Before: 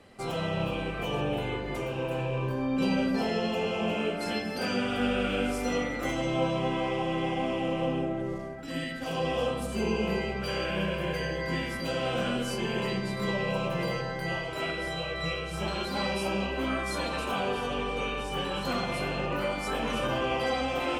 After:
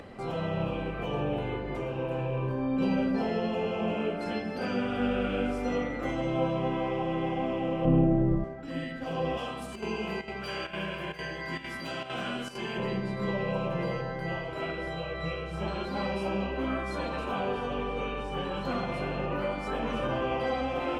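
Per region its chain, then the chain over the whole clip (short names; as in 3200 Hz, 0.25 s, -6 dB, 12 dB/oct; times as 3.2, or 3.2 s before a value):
7.85–8.44 tilt -3 dB/oct + doubler 24 ms -5 dB
9.37–12.78 tilt +2.5 dB/oct + notch 510 Hz, Q 5.9 + chopper 2.2 Hz, depth 65%, duty 85%
whole clip: LPF 1600 Hz 6 dB/oct; upward compressor, threshold -37 dBFS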